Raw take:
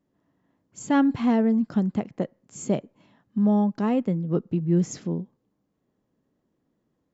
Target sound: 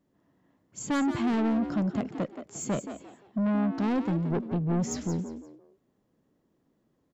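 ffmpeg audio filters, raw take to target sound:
-filter_complex "[0:a]asoftclip=type=tanh:threshold=0.0531,asplit=4[s0][s1][s2][s3];[s1]adelay=174,afreqshift=66,volume=0.316[s4];[s2]adelay=348,afreqshift=132,volume=0.0944[s5];[s3]adelay=522,afreqshift=198,volume=0.0285[s6];[s0][s4][s5][s6]amix=inputs=4:normalize=0,volume=1.19"

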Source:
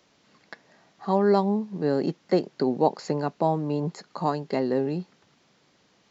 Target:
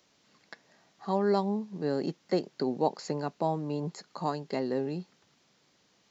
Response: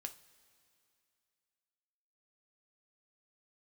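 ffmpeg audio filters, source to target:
-af "highshelf=f=4200:g=7.5,volume=0.501"

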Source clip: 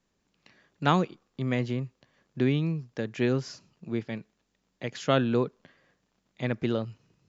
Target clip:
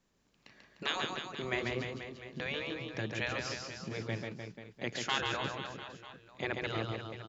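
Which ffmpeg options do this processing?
-af "afftfilt=real='re*lt(hypot(re,im),0.158)':imag='im*lt(hypot(re,im),0.158)':win_size=1024:overlap=0.75,aecho=1:1:140|301|486.2|699.1|943.9:0.631|0.398|0.251|0.158|0.1"

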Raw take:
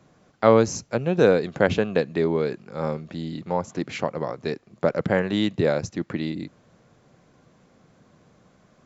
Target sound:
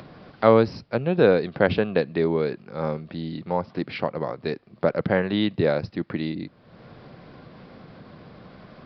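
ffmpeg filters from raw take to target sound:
-af "acompressor=mode=upward:threshold=0.0224:ratio=2.5,aresample=11025,aresample=44100"

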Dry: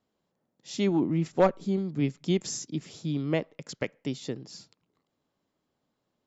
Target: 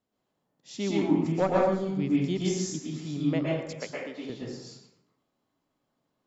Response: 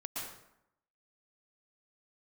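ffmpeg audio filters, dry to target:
-filter_complex "[0:a]asettb=1/sr,asplit=3[s0][s1][s2];[s0]atrim=end=3.814[s3];[s1]atrim=start=3.81:end=4.3,asetpts=PTS-STARTPTS,afade=t=in:d=0.004:c=qsin,afade=t=out:st=0.486:d=0.004:c=qsin,highpass=380,lowpass=3100[s4];[s2]atrim=start=4.296[s5];[s3][s4]acrossfade=d=0.004:c1=hsin:c2=qsin[s6];[s6][s5]acrossfade=d=0.004:c1=qsin:c2=hsin[s7];[1:a]atrim=start_sample=2205[s8];[s7][s8]afir=irnorm=-1:irlink=0"

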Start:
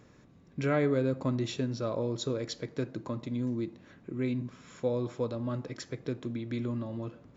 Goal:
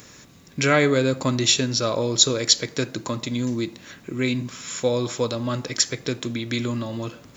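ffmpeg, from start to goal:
-af "crystalizer=i=9.5:c=0,volume=2.11"

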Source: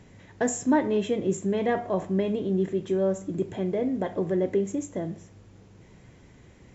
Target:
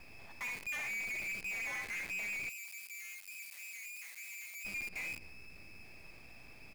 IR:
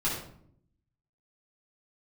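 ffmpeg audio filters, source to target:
-filter_complex "[0:a]lowpass=f=2300:t=q:w=0.5098,lowpass=f=2300:t=q:w=0.6013,lowpass=f=2300:t=q:w=0.9,lowpass=f=2300:t=q:w=2.563,afreqshift=-2700,asplit=2[s0][s1];[s1]aecho=0:1:62|77:0.211|0.282[s2];[s0][s2]amix=inputs=2:normalize=0,asoftclip=type=tanh:threshold=0.0376,acrusher=bits=7:dc=4:mix=0:aa=0.000001,highshelf=f=2100:g=-8,aeval=exprs='0.0335*(cos(1*acos(clip(val(0)/0.0335,-1,1)))-cos(1*PI/2))+0.00211*(cos(8*acos(clip(val(0)/0.0335,-1,1)))-cos(8*PI/2))':c=same,alimiter=level_in=6.68:limit=0.0631:level=0:latency=1:release=65,volume=0.15,asettb=1/sr,asplit=3[s3][s4][s5];[s3]atrim=end=2.494[s6];[s4]atrim=start=2.49:end=4.65,asetpts=PTS-STARTPTS,afade=t=in:d=0.004:c=qsin,afade=t=out:st=2.156:d=0.004:c=qsin,aderivative[s7];[s5]atrim=start=4.646[s8];[s6][s7]acrossfade=d=0.004:c1=hsin:c2=qsin[s9];[s9][s8]acrossfade=d=0.004:c1=qsin:c2=hsin,volume=1.88"

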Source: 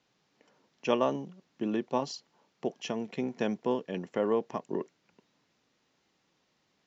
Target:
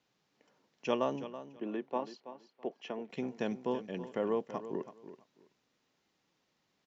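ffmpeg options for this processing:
-filter_complex "[0:a]asettb=1/sr,asplit=3[s0][s1][s2];[s0]atrim=end=1.244[s3];[s1]atrim=start=1.24:end=3.1,asetpts=PTS-STARTPTS,afade=t=in:d=0.004:c=qsin,afade=t=out:st=1.856:d=0.004:c=qsin,acrossover=split=220 3300:gain=0.126 1 0.141[s4][s5][s6];[s4][s5][s6]amix=inputs=3:normalize=0[s7];[s2]atrim=start=3.096[s8];[s3][s7]acrossfade=d=0.004:c1=hsin:c2=qsin[s9];[s9][s8]acrossfade=d=0.004:c1=qsin:c2=hsin,asplit=2[s10][s11];[s11]aecho=0:1:328|656:0.224|0.0425[s12];[s10][s12]amix=inputs=2:normalize=0,volume=0.596"

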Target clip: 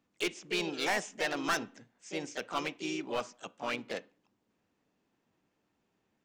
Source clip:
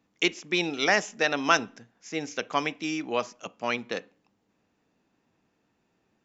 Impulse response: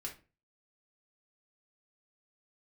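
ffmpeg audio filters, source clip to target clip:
-filter_complex "[0:a]asoftclip=type=hard:threshold=0.1,asplit=3[s0][s1][s2];[s1]asetrate=52444,aresample=44100,atempo=0.840896,volume=0.501[s3];[s2]asetrate=55563,aresample=44100,atempo=0.793701,volume=0.224[s4];[s0][s3][s4]amix=inputs=3:normalize=0,volume=0.473"

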